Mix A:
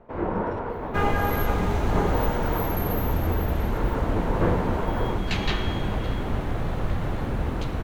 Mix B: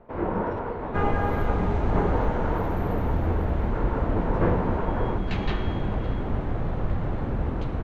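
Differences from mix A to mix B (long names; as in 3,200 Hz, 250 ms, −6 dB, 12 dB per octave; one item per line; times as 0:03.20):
second sound: add high-shelf EQ 2,200 Hz −10.5 dB
master: add high-frequency loss of the air 66 metres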